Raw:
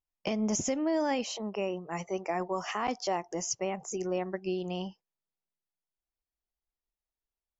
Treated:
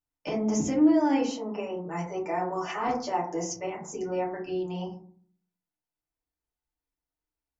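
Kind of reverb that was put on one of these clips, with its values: FDN reverb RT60 0.5 s, low-frequency decay 1.55×, high-frequency decay 0.3×, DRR -6.5 dB; gain -5.5 dB

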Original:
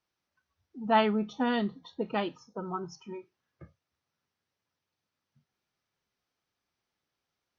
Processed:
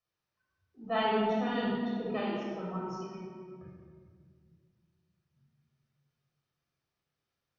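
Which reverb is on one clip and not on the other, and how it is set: shoebox room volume 3100 m³, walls mixed, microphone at 6.1 m; gain -10.5 dB

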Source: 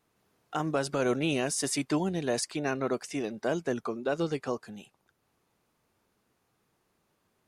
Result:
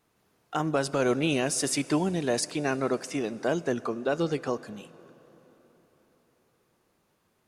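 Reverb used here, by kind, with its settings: plate-style reverb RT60 4.3 s, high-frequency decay 0.8×, DRR 17.5 dB; gain +2.5 dB

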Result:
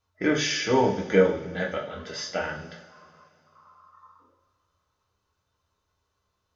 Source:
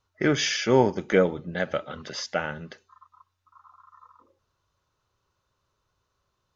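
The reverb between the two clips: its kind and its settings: two-slope reverb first 0.42 s, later 2.8 s, from -20 dB, DRR -2 dB; gain -4.5 dB

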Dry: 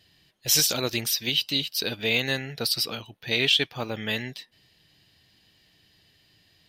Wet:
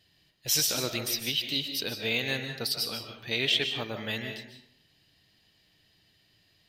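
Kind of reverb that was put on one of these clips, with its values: digital reverb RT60 0.68 s, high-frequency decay 0.65×, pre-delay 0.105 s, DRR 5.5 dB; gain -5 dB

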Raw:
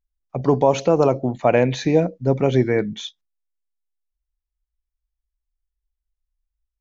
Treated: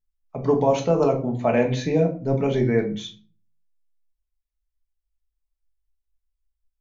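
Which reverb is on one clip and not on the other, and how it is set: shoebox room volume 250 m³, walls furnished, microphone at 1.5 m; gain -6 dB

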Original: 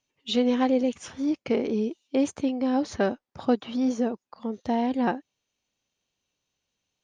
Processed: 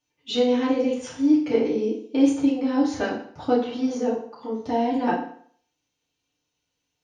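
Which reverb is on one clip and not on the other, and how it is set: FDN reverb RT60 0.56 s, low-frequency decay 0.9×, high-frequency decay 0.9×, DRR -7.5 dB; gain -6 dB

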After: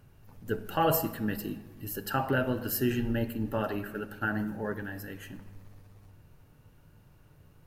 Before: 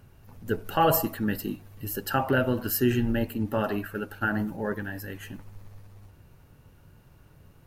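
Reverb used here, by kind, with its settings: shoebox room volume 1500 m³, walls mixed, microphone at 0.45 m; gain -4 dB

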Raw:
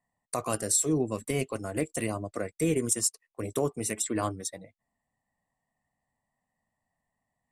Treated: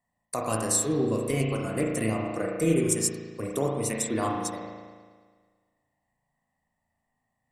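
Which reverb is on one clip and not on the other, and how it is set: spring tank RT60 1.6 s, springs 36 ms, chirp 75 ms, DRR -1 dB

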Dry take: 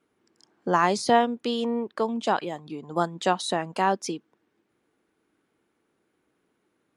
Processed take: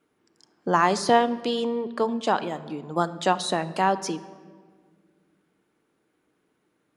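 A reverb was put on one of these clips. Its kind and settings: shoebox room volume 2300 m³, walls mixed, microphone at 0.45 m; gain +1 dB

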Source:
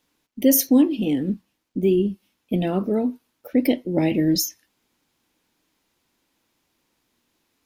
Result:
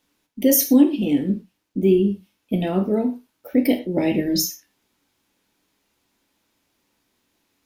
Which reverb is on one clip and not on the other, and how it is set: non-linear reverb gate 0.14 s falling, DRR 5 dB

